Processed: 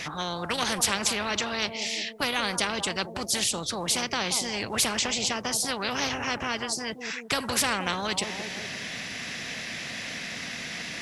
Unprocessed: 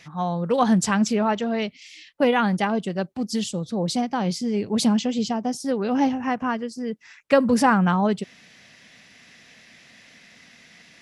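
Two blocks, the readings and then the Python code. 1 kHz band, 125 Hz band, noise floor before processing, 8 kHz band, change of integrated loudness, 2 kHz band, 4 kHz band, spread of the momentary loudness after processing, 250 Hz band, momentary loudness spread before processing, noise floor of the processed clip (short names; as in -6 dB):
-6.5 dB, -11.0 dB, -52 dBFS, +7.0 dB, -5.0 dB, +1.5 dB, +7.0 dB, 9 LU, -13.5 dB, 9 LU, -39 dBFS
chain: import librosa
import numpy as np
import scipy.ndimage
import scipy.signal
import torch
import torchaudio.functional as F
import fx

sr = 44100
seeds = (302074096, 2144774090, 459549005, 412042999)

y = fx.echo_bbd(x, sr, ms=178, stages=1024, feedback_pct=36, wet_db=-18)
y = fx.spectral_comp(y, sr, ratio=4.0)
y = y * 10.0 ** (-3.0 / 20.0)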